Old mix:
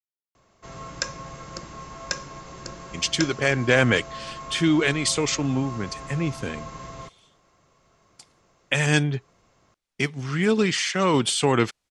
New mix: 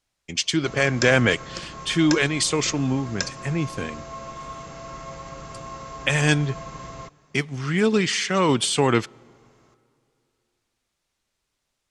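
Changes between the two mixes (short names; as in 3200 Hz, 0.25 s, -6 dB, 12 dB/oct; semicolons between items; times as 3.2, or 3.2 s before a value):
speech: entry -2.65 s; reverb: on, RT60 2.7 s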